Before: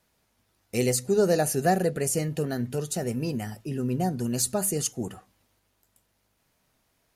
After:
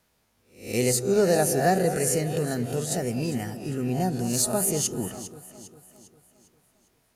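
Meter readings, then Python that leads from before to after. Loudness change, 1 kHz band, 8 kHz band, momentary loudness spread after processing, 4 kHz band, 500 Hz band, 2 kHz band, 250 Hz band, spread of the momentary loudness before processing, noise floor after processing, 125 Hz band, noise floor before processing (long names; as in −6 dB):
+2.0 dB, +2.0 dB, +3.0 dB, 13 LU, +3.0 dB, +2.0 dB, +2.5 dB, +1.0 dB, 9 LU, −69 dBFS, +1.0 dB, −72 dBFS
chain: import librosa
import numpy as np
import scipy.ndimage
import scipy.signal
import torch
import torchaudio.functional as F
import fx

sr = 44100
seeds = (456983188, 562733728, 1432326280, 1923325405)

y = fx.spec_swells(x, sr, rise_s=0.44)
y = fx.echo_alternate(y, sr, ms=201, hz=1100.0, feedback_pct=67, wet_db=-11.0)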